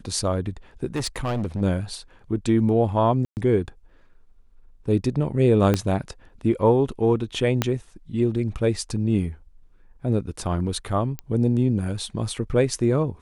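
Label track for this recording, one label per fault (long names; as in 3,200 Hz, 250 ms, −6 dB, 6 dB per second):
0.950000	1.610000	clipping −22 dBFS
3.250000	3.370000	drop-out 119 ms
5.740000	5.740000	click −8 dBFS
7.620000	7.620000	click −6 dBFS
11.190000	11.190000	click −16 dBFS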